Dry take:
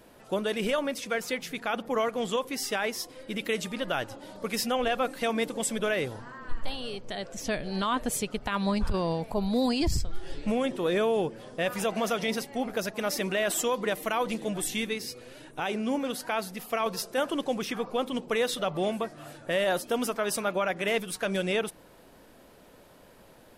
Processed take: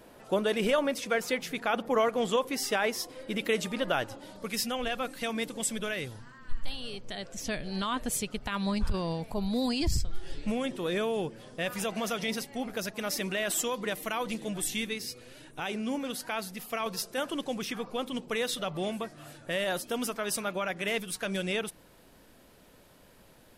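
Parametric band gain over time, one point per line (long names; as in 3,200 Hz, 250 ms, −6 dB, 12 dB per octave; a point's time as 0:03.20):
parametric band 620 Hz 2.8 octaves
0:03.91 +2 dB
0:04.55 −7 dB
0:05.75 −7 dB
0:06.43 −15 dB
0:06.96 −5.5 dB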